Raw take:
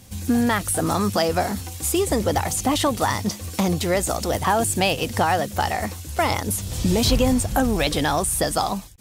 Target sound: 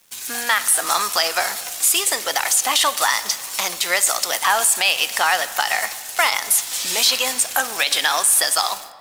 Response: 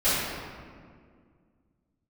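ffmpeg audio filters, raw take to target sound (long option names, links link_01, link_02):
-filter_complex "[0:a]highpass=1400,aeval=exprs='sgn(val(0))*max(abs(val(0))-0.00398,0)':channel_layout=same,asplit=2[link_01][link_02];[1:a]atrim=start_sample=2205[link_03];[link_02][link_03]afir=irnorm=-1:irlink=0,volume=-29.5dB[link_04];[link_01][link_04]amix=inputs=2:normalize=0,alimiter=level_in=16dB:limit=-1dB:release=50:level=0:latency=1,volume=-4.5dB"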